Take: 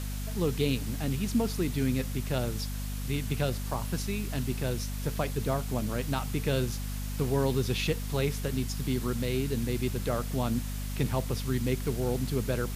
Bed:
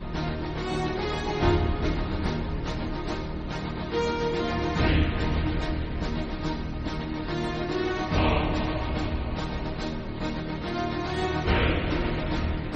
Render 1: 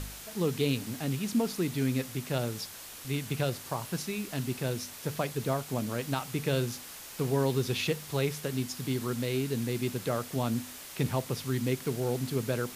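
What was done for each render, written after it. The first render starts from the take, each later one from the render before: de-hum 50 Hz, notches 5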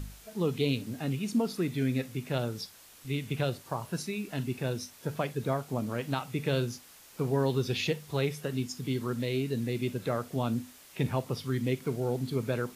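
noise print and reduce 9 dB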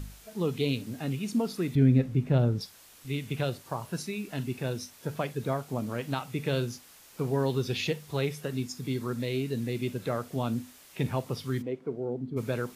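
1.75–2.61 s: tilt EQ -3.5 dB/octave; 8.50–9.25 s: band-stop 3 kHz; 11.61–12.36 s: band-pass filter 630 Hz -> 220 Hz, Q 0.96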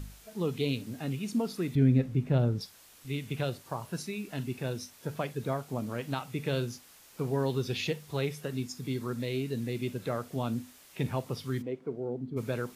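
trim -2 dB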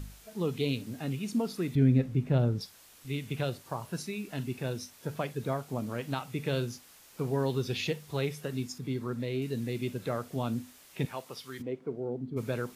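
8.78–9.42 s: treble shelf 3.3 kHz -8 dB; 11.05–11.60 s: high-pass 870 Hz 6 dB/octave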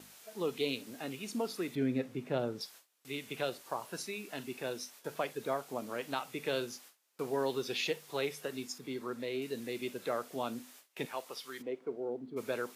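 gate with hold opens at -42 dBFS; high-pass 360 Hz 12 dB/octave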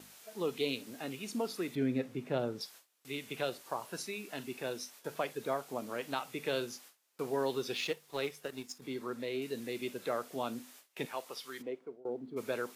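7.75–8.82 s: companding laws mixed up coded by A; 11.65–12.05 s: fade out, to -22.5 dB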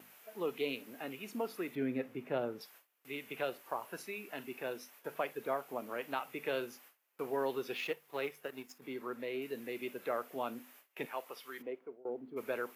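high-pass 310 Hz 6 dB/octave; high-order bell 5.8 kHz -10.5 dB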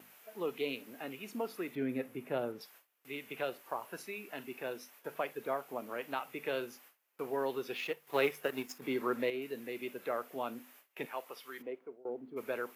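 1.89–2.52 s: peaking EQ 11 kHz +10 dB 0.93 oct; 8.07–9.30 s: gain +8 dB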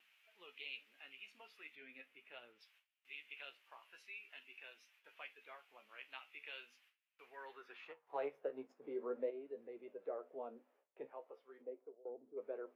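flange 0.41 Hz, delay 8.8 ms, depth 6.7 ms, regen +40%; band-pass sweep 2.7 kHz -> 510 Hz, 7.21–8.45 s

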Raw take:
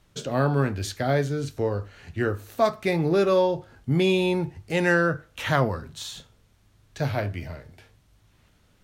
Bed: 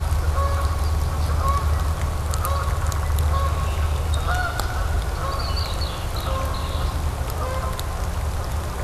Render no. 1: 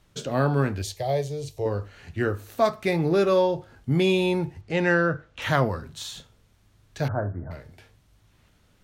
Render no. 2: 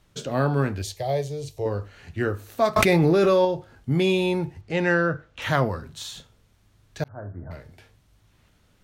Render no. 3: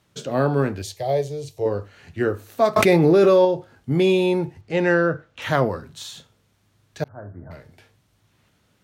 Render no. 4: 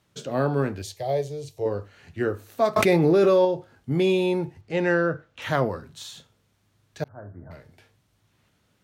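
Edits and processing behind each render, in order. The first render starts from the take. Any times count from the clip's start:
0.82–1.66 s: static phaser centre 600 Hz, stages 4; 4.61–5.42 s: distance through air 100 m; 7.08–7.51 s: steep low-pass 1.6 kHz 72 dB/octave
2.76–3.45 s: level flattener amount 100%; 7.04–7.55 s: fade in
dynamic bell 430 Hz, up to +5 dB, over -32 dBFS, Q 0.81; high-pass 94 Hz
trim -3.5 dB

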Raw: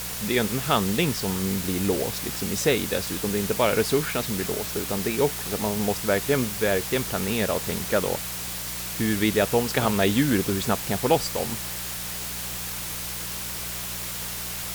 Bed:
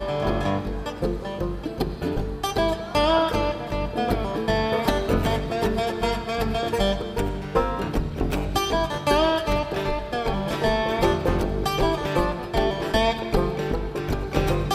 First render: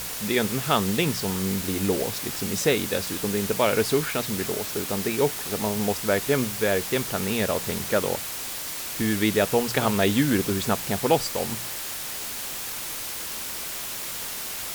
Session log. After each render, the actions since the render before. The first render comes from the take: de-hum 60 Hz, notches 3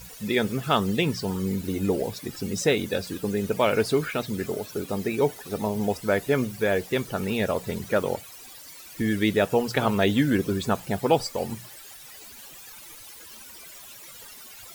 noise reduction 16 dB, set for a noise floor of -33 dBFS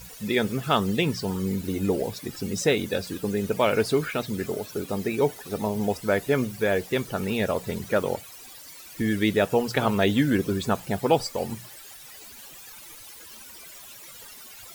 no audible change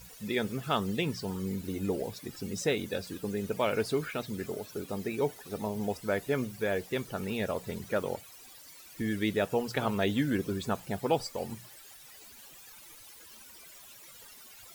trim -7 dB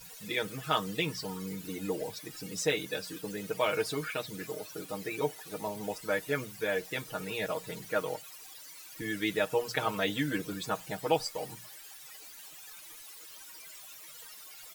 bass shelf 450 Hz -9.5 dB; comb 6.4 ms, depth 94%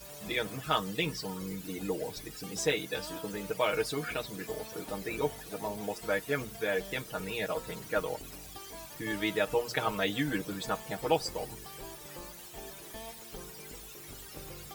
add bed -25 dB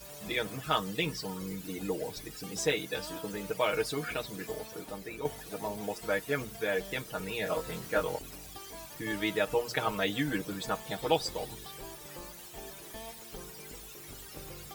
4.48–5.25 s: fade out, to -7.5 dB; 7.44–8.19 s: doubling 23 ms -3.5 dB; 10.85–11.72 s: peaking EQ 3.6 kHz +10 dB 0.28 oct

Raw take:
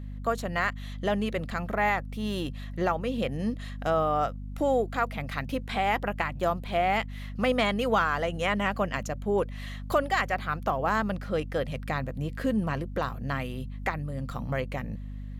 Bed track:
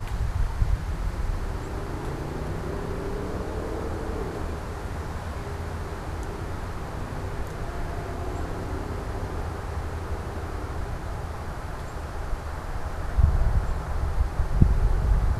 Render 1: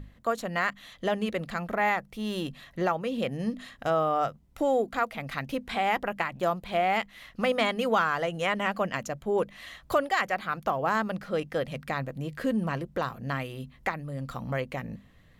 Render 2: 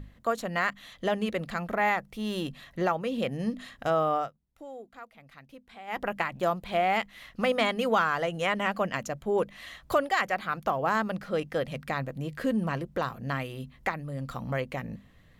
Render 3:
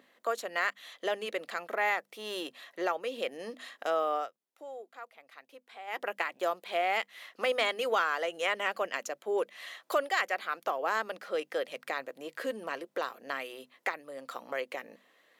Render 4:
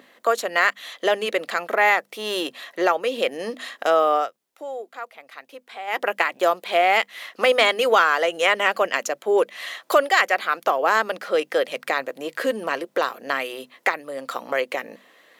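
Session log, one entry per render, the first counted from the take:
hum notches 50/100/150/200/250 Hz
4.15–6.03 s: dip -18 dB, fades 0.16 s
high-pass 380 Hz 24 dB/octave; dynamic bell 870 Hz, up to -5 dB, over -40 dBFS, Q 0.9
trim +11.5 dB

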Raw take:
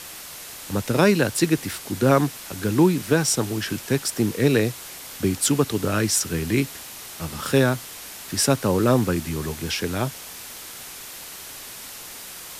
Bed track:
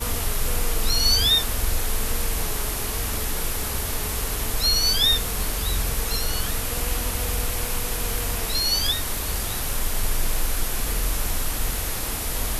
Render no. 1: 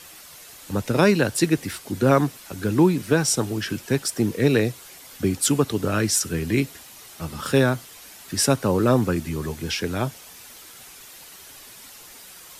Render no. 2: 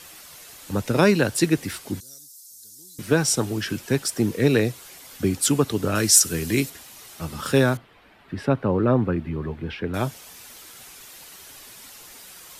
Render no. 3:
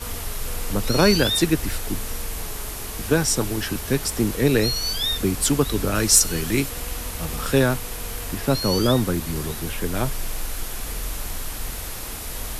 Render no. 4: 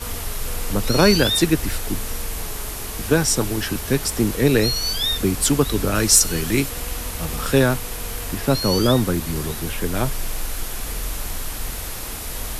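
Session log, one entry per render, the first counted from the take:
noise reduction 8 dB, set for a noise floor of -39 dBFS
2.00–2.99 s: inverse Chebyshev high-pass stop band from 2.7 kHz; 5.95–6.70 s: tone controls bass -2 dB, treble +8 dB; 7.77–9.94 s: distance through air 480 m
add bed track -5 dB
trim +2 dB; peak limiter -1 dBFS, peak gain reduction 1 dB

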